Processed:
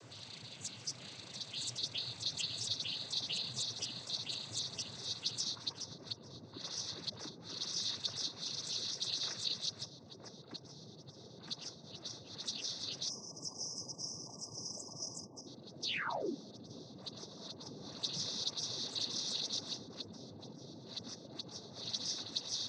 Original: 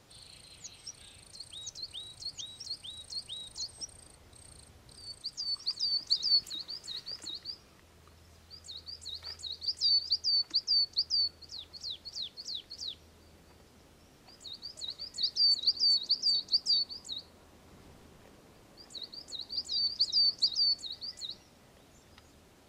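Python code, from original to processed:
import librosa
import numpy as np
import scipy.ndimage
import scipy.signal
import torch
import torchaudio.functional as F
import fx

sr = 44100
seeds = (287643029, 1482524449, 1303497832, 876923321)

p1 = fx.low_shelf(x, sr, hz=500.0, db=4.0)
p2 = p1 + fx.echo_feedback(p1, sr, ms=965, feedback_pct=55, wet_db=-3.5, dry=0)
p3 = fx.env_lowpass_down(p2, sr, base_hz=590.0, full_db=-27.0)
p4 = fx.spec_paint(p3, sr, seeds[0], shape='fall', start_s=15.82, length_s=0.52, low_hz=230.0, high_hz=5200.0, level_db=-42.0)
p5 = 10.0 ** (-39.5 / 20.0) * np.tanh(p4 / 10.0 ** (-39.5 / 20.0))
p6 = p4 + F.gain(torch.from_numpy(p5), -8.0).numpy()
p7 = fx.noise_vocoder(p6, sr, seeds[1], bands=16)
p8 = fx.spec_erase(p7, sr, start_s=13.09, length_s=2.38, low_hz=1200.0, high_hz=4900.0)
y = F.gain(torch.from_numpy(p8), 1.5).numpy()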